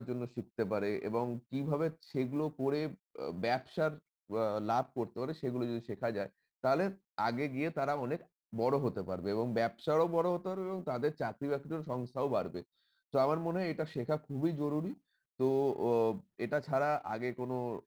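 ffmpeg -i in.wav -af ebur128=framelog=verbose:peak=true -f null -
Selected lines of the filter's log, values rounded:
Integrated loudness:
  I:         -35.2 LUFS
  Threshold: -45.4 LUFS
Loudness range:
  LRA:         2.2 LU
  Threshold: -55.4 LUFS
  LRA low:   -36.4 LUFS
  LRA high:  -34.2 LUFS
True peak:
  Peak:      -18.2 dBFS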